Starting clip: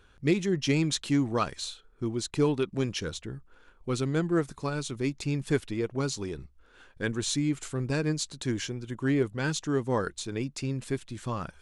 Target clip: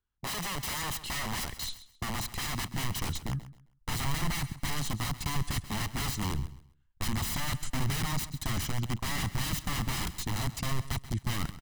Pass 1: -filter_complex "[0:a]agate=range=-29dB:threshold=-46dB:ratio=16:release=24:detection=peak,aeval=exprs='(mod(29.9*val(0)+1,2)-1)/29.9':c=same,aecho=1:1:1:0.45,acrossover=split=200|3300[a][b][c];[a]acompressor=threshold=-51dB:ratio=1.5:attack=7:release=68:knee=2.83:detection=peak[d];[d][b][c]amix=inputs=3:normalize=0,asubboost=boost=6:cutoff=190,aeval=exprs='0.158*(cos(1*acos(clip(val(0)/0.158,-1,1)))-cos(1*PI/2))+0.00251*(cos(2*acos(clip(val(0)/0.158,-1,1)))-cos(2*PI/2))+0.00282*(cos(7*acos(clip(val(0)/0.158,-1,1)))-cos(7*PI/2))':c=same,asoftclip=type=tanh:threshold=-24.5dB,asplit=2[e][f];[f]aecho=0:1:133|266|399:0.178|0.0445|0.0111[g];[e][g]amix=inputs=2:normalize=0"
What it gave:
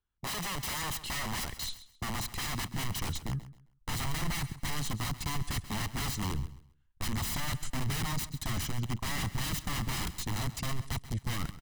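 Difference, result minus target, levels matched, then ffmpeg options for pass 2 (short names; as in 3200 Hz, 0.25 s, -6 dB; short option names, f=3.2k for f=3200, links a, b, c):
soft clip: distortion +15 dB
-filter_complex "[0:a]agate=range=-29dB:threshold=-46dB:ratio=16:release=24:detection=peak,aeval=exprs='(mod(29.9*val(0)+1,2)-1)/29.9':c=same,aecho=1:1:1:0.45,acrossover=split=200|3300[a][b][c];[a]acompressor=threshold=-51dB:ratio=1.5:attack=7:release=68:knee=2.83:detection=peak[d];[d][b][c]amix=inputs=3:normalize=0,asubboost=boost=6:cutoff=190,aeval=exprs='0.158*(cos(1*acos(clip(val(0)/0.158,-1,1)))-cos(1*PI/2))+0.00251*(cos(2*acos(clip(val(0)/0.158,-1,1)))-cos(2*PI/2))+0.00282*(cos(7*acos(clip(val(0)/0.158,-1,1)))-cos(7*PI/2))':c=same,asoftclip=type=tanh:threshold=-15dB,asplit=2[e][f];[f]aecho=0:1:133|266|399:0.178|0.0445|0.0111[g];[e][g]amix=inputs=2:normalize=0"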